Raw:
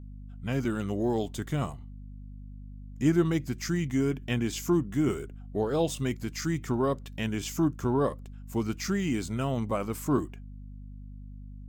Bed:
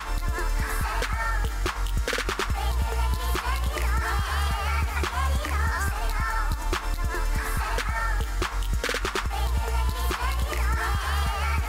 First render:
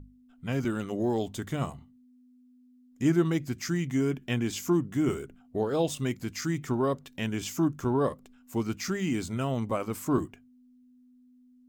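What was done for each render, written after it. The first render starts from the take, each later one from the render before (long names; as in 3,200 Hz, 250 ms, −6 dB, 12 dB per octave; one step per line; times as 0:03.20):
mains-hum notches 50/100/150/200 Hz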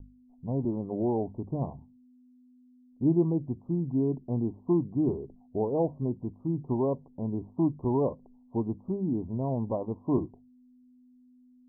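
Butterworth low-pass 1,000 Hz 96 dB per octave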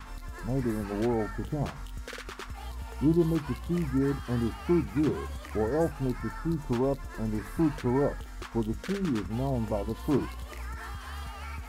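mix in bed −13.5 dB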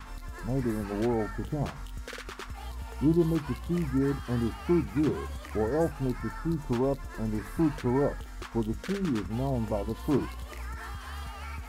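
no processing that can be heard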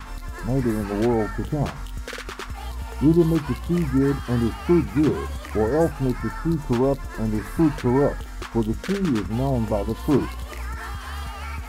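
level +7 dB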